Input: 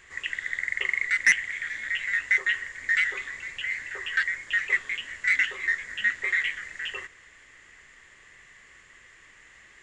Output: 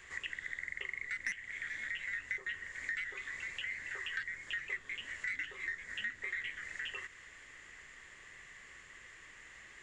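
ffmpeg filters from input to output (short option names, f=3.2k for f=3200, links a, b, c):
-filter_complex "[0:a]acrossover=split=330|910[a][b][c];[a]acompressor=threshold=-58dB:ratio=4[d];[b]acompressor=threshold=-60dB:ratio=4[e];[c]acompressor=threshold=-38dB:ratio=4[f];[d][e][f]amix=inputs=3:normalize=0,volume=-1.5dB"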